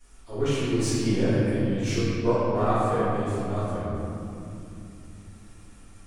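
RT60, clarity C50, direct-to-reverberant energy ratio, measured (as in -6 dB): 2.9 s, -5.0 dB, -17.5 dB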